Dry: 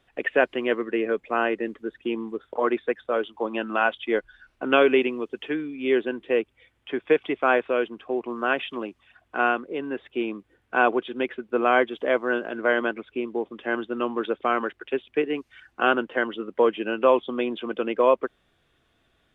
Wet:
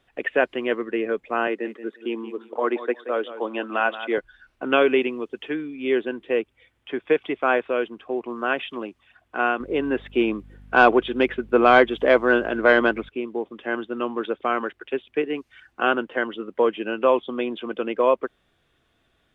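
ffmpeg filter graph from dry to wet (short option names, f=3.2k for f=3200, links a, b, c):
-filter_complex "[0:a]asettb=1/sr,asplit=3[a][b][c];[a]atrim=end=1.474[d];[b]atrim=start=1.47:end=4.18,asetpts=PTS-STARTPTS,afade=t=in:d=0.004:c=qsin,afade=t=out:st=2.706:d=0.004:c=qsin,highpass=f=220:w=0.5412,highpass=f=220:w=1.3066,aecho=1:1:177|354|531:0.224|0.0515|0.0118,atrim=end_sample=119511[e];[c]atrim=start=4.176[f];[d][e]acrossfade=d=0.004:c1=hsin:c2=qsin[g];[g][f]acrossfade=d=0.004:c1=qsin:c2=hsin,asettb=1/sr,asplit=3[h][i][j];[h]atrim=end=9.604[k];[i]atrim=start=9.6:end=13.09,asetpts=PTS-STARTPTS,afade=t=in:d=0.004:c=qsin,afade=t=out:st=3.486:d=0.004:c=qsin,acontrast=71,aeval=exprs='val(0)+0.00562*(sin(2*PI*50*n/s)+sin(2*PI*2*50*n/s)/2+sin(2*PI*3*50*n/s)/3+sin(2*PI*4*50*n/s)/4+sin(2*PI*5*50*n/s)/5)':c=same[l];[j]atrim=start=13.086[m];[k][l]acrossfade=d=0.004:c1=hsin:c2=qsin[n];[n][m]acrossfade=d=0.004:c1=qsin:c2=hsin"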